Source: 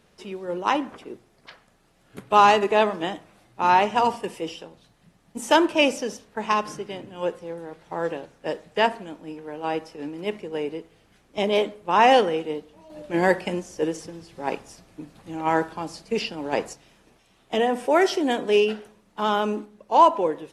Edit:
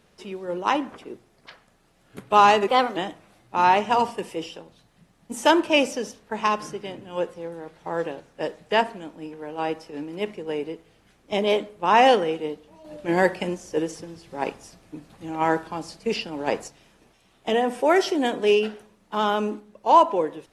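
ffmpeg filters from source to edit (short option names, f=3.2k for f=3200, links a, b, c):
-filter_complex "[0:a]asplit=3[a][b][c];[a]atrim=end=2.684[d];[b]atrim=start=2.68:end=3.02,asetpts=PTS-STARTPTS,asetrate=52479,aresample=44100[e];[c]atrim=start=3.016[f];[d][e]acrossfade=d=0.004:c1=hsin:c2=hsin[g];[g][f]acrossfade=d=0.004:c1=hsin:c2=hsin"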